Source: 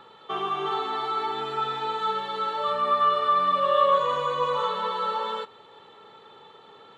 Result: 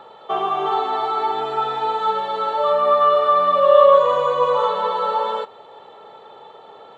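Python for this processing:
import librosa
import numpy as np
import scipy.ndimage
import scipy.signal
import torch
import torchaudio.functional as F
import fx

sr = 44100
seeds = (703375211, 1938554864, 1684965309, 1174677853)

y = fx.peak_eq(x, sr, hz=660.0, db=14.0, octaves=1.0)
y = y * 10.0 ** (1.0 / 20.0)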